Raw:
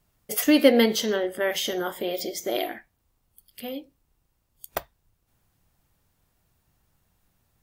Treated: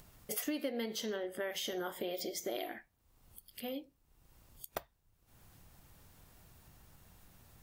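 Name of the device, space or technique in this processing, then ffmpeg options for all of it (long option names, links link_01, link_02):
upward and downward compression: -af "acompressor=mode=upward:threshold=-40dB:ratio=2.5,acompressor=threshold=-29dB:ratio=6,volume=-6dB"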